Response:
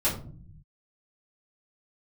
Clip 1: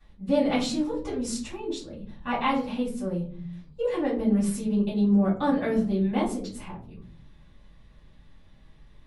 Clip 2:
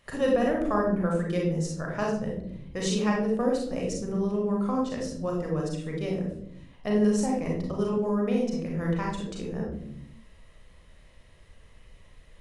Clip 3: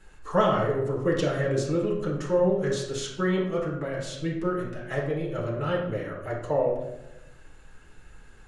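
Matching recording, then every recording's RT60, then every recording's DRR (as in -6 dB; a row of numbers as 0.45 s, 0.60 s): 1; 0.50 s, 0.75 s, 0.95 s; -10.5 dB, -2.0 dB, -5.0 dB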